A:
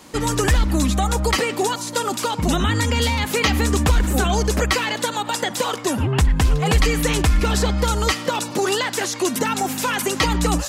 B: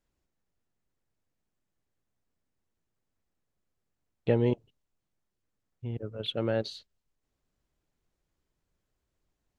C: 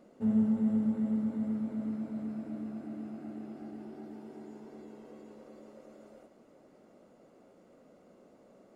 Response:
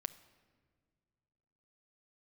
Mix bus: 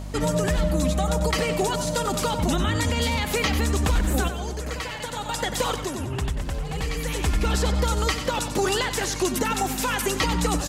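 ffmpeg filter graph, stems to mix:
-filter_complex "[0:a]aeval=exprs='val(0)+0.0316*(sin(2*PI*50*n/s)+sin(2*PI*2*50*n/s)/2+sin(2*PI*3*50*n/s)/3+sin(2*PI*4*50*n/s)/4+sin(2*PI*5*50*n/s)/5)':c=same,volume=-2.5dB,asplit=2[a][b];[b]volume=-11dB[c];[1:a]aecho=1:1:5:0.65,volume=-15dB,asplit=2[d][e];[2:a]bass=f=250:g=15,treble=f=4k:g=6,acompressor=mode=upward:threshold=-38dB:ratio=2.5,aeval=exprs='val(0)*sin(2*PI*390*n/s)':c=same,volume=0dB[f];[e]apad=whole_len=471312[g];[a][g]sidechaincompress=threshold=-56dB:ratio=8:attack=36:release=760[h];[c]aecho=0:1:93|186|279|372|465:1|0.32|0.102|0.0328|0.0105[i];[h][d][f][i]amix=inputs=4:normalize=0,alimiter=limit=-13.5dB:level=0:latency=1:release=186"

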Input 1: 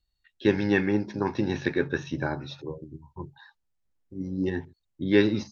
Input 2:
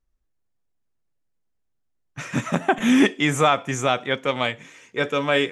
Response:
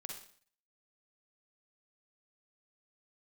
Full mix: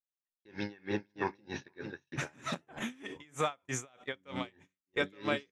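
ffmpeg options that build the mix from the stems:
-filter_complex "[0:a]lowshelf=f=450:g=-9,volume=-2dB,asplit=3[a][b][c];[b]volume=-15.5dB[d];[c]volume=-8dB[e];[1:a]lowshelf=f=350:g=-5,alimiter=limit=-17dB:level=0:latency=1:release=451,volume=-1.5dB,asplit=2[f][g];[g]volume=-15.5dB[h];[2:a]atrim=start_sample=2205[i];[d][h]amix=inputs=2:normalize=0[j];[j][i]afir=irnorm=-1:irlink=0[k];[e]aecho=0:1:455:1[l];[a][f][k][l]amix=inputs=4:normalize=0,agate=range=-35dB:threshold=-38dB:ratio=16:detection=peak,aeval=exprs='val(0)*pow(10,-33*(0.5-0.5*cos(2*PI*3.2*n/s))/20)':c=same"

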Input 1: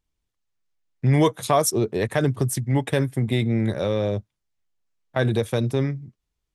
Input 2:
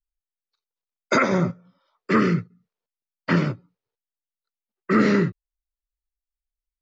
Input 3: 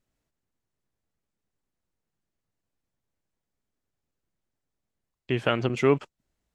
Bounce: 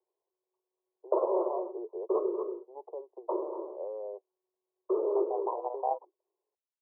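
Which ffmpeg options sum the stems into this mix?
-filter_complex "[0:a]acompressor=threshold=-28dB:ratio=5,volume=-5.5dB[a];[1:a]volume=0.5dB,asplit=2[b][c];[c]volume=-10.5dB[d];[2:a]aeval=exprs='val(0)*sgn(sin(2*PI*370*n/s))':c=same,volume=-5.5dB[e];[b][e]amix=inputs=2:normalize=0,acompressor=threshold=-23dB:ratio=2,volume=0dB[f];[d]aecho=0:1:237:1[g];[a][f][g]amix=inputs=3:normalize=0,asuperpass=centerf=610:order=20:qfactor=0.86"

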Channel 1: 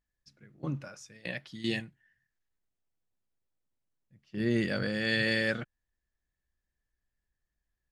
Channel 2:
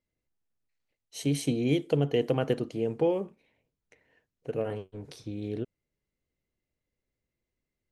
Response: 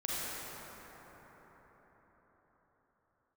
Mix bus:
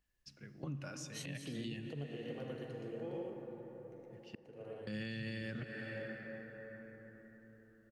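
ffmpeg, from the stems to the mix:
-filter_complex "[0:a]equalizer=f=2.8k:w=7.6:g=9,volume=2dB,asplit=3[a][b][c];[a]atrim=end=4.35,asetpts=PTS-STARTPTS,afade=t=out:st=4.346:d=0.004:c=hsin[d];[b]atrim=start=4.35:end=4.87,asetpts=PTS-STARTPTS,volume=0[e];[c]atrim=start=4.87,asetpts=PTS-STARTPTS,afade=t=in:d=0.004:c=hsin[f];[d][e][f]concat=n=3:v=0:a=1,asplit=3[g][h][i];[h]volume=-17.5dB[j];[1:a]equalizer=f=4.3k:w=0.53:g=4,volume=-10.5dB,asplit=3[k][l][m];[l]volume=-14.5dB[n];[m]volume=-11dB[o];[i]apad=whole_len=348882[p];[k][p]sidechaingate=range=-18dB:threshold=-58dB:ratio=16:detection=peak[q];[2:a]atrim=start_sample=2205[r];[j][n]amix=inputs=2:normalize=0[s];[s][r]afir=irnorm=-1:irlink=0[t];[o]aecho=0:1:117:1[u];[g][q][t][u]amix=inputs=4:normalize=0,acrossover=split=240[v][w];[w]acompressor=threshold=-37dB:ratio=6[x];[v][x]amix=inputs=2:normalize=0,alimiter=level_in=9.5dB:limit=-24dB:level=0:latency=1:release=307,volume=-9.5dB"

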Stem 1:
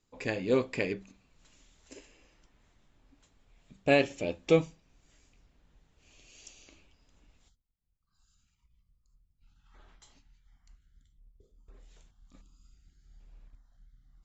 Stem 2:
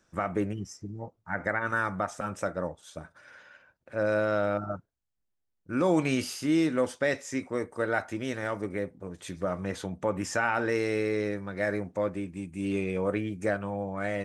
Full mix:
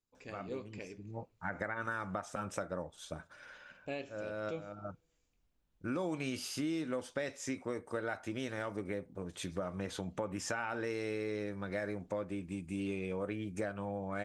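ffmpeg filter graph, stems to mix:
-filter_complex "[0:a]volume=-15.5dB,asplit=3[a][b][c];[b]volume=-23.5dB[d];[1:a]equalizer=f=3.4k:w=1.5:g=3,adelay=150,volume=-1.5dB[e];[c]apad=whole_len=634930[f];[e][f]sidechaincompress=threshold=-57dB:ratio=6:attack=7.9:release=288[g];[d]aecho=0:1:82|164|246|328|410|492|574|656|738|820:1|0.6|0.36|0.216|0.13|0.0778|0.0467|0.028|0.0168|0.0101[h];[a][g][h]amix=inputs=3:normalize=0,equalizer=f=1.9k:t=o:w=0.21:g=-3.5,acompressor=threshold=-35dB:ratio=4"

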